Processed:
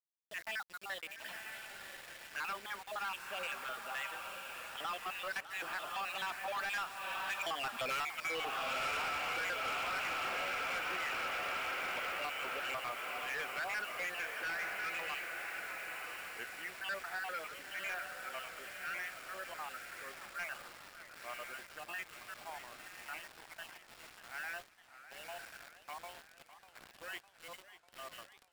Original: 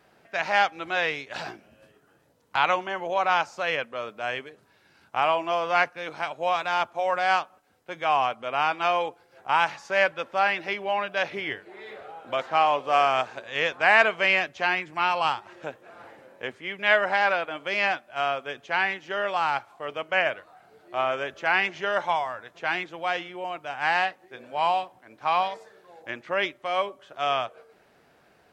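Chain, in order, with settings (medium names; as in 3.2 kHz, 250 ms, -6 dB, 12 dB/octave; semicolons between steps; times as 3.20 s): random holes in the spectrogram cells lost 50%; Doppler pass-by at 7.88 s, 26 m/s, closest 2.2 m; brick-wall FIR high-pass 170 Hz; treble shelf 4.5 kHz +4 dB; echo that smears into a reverb 1009 ms, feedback 46%, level -9 dB; compression 4:1, threshold -59 dBFS, peak gain reduction 26.5 dB; high-order bell 2 kHz +8 dB; bit crusher 12-bit; waveshaping leveller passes 5; band-stop 6.2 kHz, Q 12; modulated delay 599 ms, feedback 64%, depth 193 cents, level -14 dB; trim +3.5 dB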